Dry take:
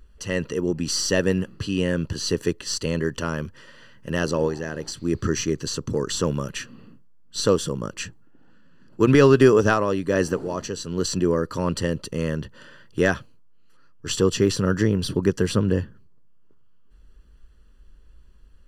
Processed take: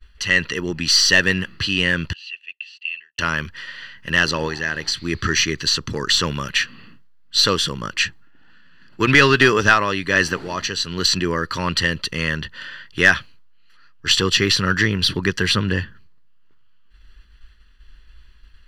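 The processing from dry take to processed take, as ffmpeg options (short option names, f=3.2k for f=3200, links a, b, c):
-filter_complex "[0:a]asettb=1/sr,asplit=3[a][b][c];[a]atrim=end=2.134[d];[b]atrim=start=2.13:end=3.19,asetpts=PTS-STARTPTS,afade=t=in:d=0.004:c=qsin,afade=t=out:st=1.056:d=0.004:c=qsin,bandpass=f=2.7k:t=q:w=19[e];[c]atrim=start=3.186[f];[d][e]acrossfade=d=0.004:c1=hsin:c2=qsin[g];[g][f]acrossfade=d=0.004:c1=qsin:c2=hsin,agate=range=-33dB:threshold=-47dB:ratio=3:detection=peak,equalizer=f=125:t=o:w=1:g=-4,equalizer=f=250:t=o:w=1:g=-4,equalizer=f=500:t=o:w=1:g=-8,equalizer=f=2k:t=o:w=1:g=11,equalizer=f=4k:t=o:w=1:g=10,equalizer=f=8k:t=o:w=1:g=-5,acontrast=39,volume=-1dB"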